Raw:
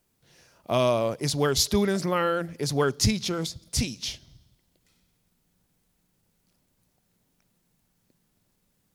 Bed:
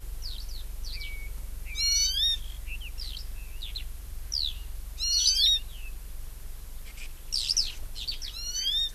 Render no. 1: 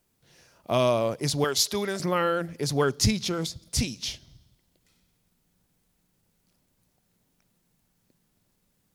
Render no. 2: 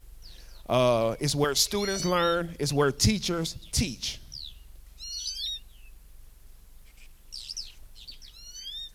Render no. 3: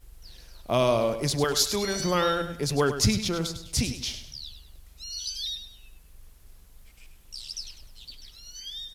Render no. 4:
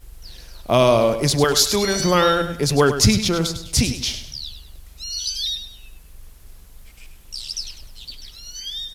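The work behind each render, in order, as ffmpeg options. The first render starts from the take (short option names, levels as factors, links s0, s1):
-filter_complex "[0:a]asettb=1/sr,asplit=3[s0][s1][s2];[s0]atrim=end=1.444[s3];[s1]atrim=start=1.44:end=2,asetpts=PTS-STARTPTS,afade=t=in:d=0.004:c=qsin,afade=t=out:st=0.556:d=0.004:c=qsin,highpass=f=520:p=1[s4];[s2]atrim=start=1.996[s5];[s3][s4]acrossfade=d=0.004:c1=hsin:c2=qsin[s6];[s6][s5]acrossfade=d=0.004:c1=qsin:c2=hsin"
-filter_complex "[1:a]volume=0.282[s0];[0:a][s0]amix=inputs=2:normalize=0"
-af "aecho=1:1:101|202|303|404:0.316|0.108|0.0366|0.0124"
-af "volume=2.51,alimiter=limit=0.708:level=0:latency=1"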